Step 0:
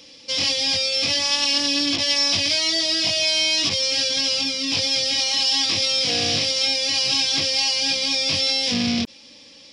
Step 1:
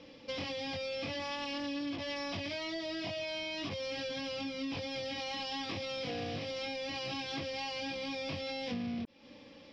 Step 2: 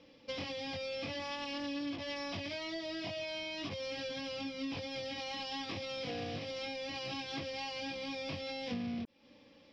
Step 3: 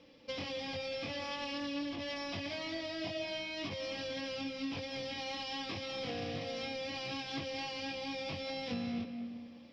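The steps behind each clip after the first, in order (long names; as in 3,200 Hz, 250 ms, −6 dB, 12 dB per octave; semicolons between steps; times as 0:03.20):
Bessel low-pass filter 1,400 Hz, order 2; downward compressor 6 to 1, threshold −36 dBFS, peak gain reduction 14.5 dB
expander for the loud parts 1.5 to 1, over −48 dBFS
comb and all-pass reverb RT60 1.8 s, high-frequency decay 0.65×, pre-delay 120 ms, DRR 7.5 dB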